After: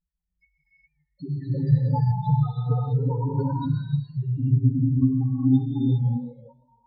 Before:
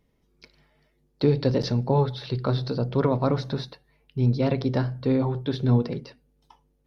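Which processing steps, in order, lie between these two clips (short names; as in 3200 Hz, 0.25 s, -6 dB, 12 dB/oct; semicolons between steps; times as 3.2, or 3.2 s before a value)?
random spectral dropouts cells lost 34%; high shelf 5500 Hz -5 dB; notch 390 Hz, Q 12; sample leveller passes 3; compressor 4:1, threshold -18 dBFS, peak gain reduction 4.5 dB; loudest bins only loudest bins 1; air absorption 180 m; reverb, pre-delay 3 ms, DRR -6 dB; warbling echo 0.162 s, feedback 36%, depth 147 cents, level -22.5 dB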